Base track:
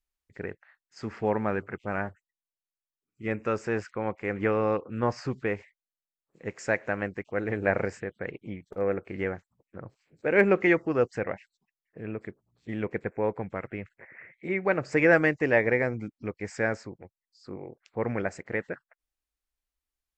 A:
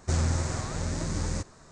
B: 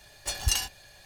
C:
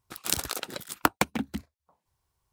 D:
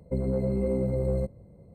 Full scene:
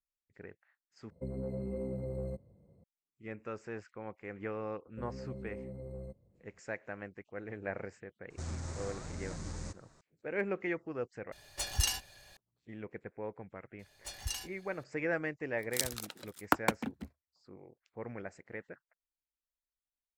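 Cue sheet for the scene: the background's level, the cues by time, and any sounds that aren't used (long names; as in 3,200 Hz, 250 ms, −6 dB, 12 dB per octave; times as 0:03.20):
base track −13.5 dB
0:01.10: overwrite with D −11 dB + high-pass filter 55 Hz
0:04.86: mix in D −17.5 dB
0:08.30: mix in A −11 dB + brickwall limiter −20.5 dBFS
0:11.32: overwrite with B −4.5 dB
0:13.79: mix in B −12.5 dB
0:15.47: mix in C −10 dB + multiband upward and downward expander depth 70%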